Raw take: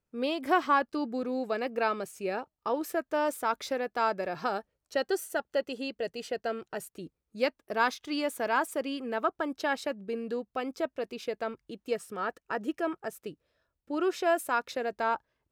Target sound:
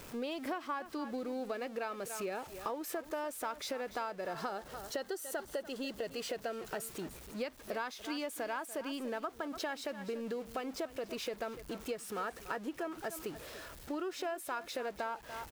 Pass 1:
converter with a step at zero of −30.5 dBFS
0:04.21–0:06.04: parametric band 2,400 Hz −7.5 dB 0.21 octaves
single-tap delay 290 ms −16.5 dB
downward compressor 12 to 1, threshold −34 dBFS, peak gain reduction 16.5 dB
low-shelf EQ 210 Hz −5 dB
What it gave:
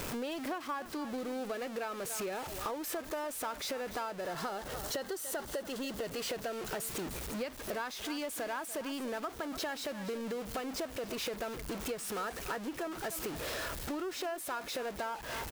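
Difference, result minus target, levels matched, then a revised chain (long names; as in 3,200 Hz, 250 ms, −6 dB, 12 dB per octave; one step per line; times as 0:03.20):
converter with a step at zero: distortion +9 dB
converter with a step at zero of −41.5 dBFS
0:04.21–0:06.04: parametric band 2,400 Hz −7.5 dB 0.21 octaves
single-tap delay 290 ms −16.5 dB
downward compressor 12 to 1, threshold −34 dBFS, peak gain reduction 16 dB
low-shelf EQ 210 Hz −5 dB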